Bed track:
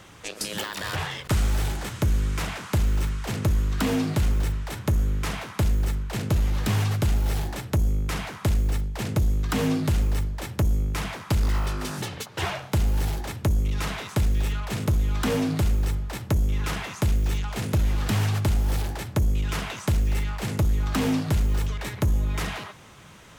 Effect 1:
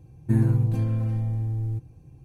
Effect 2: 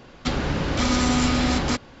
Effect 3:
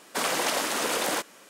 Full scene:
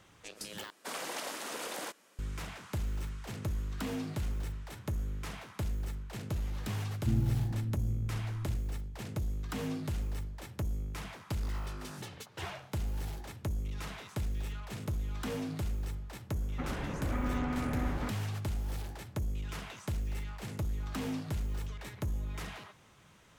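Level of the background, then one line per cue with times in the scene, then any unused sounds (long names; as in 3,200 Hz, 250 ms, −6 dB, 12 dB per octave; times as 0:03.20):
bed track −12.5 dB
0:00.70: overwrite with 3 −12.5 dB
0:06.77: mix in 1 −9.5 dB + inverse Chebyshev low-pass filter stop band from 1,200 Hz, stop band 60 dB
0:16.33: mix in 2 −13 dB + low-pass filter 2,100 Hz 24 dB per octave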